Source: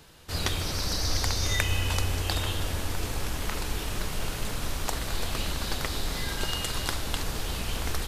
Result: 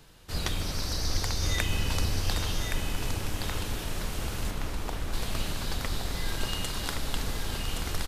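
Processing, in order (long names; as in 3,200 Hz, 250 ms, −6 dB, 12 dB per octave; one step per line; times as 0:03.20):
sub-octave generator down 2 octaves, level +3 dB
0:04.50–0:05.12: low-pass filter 2,800 Hz → 1,300 Hz 6 dB per octave
single-tap delay 1,120 ms −5.5 dB
level −3.5 dB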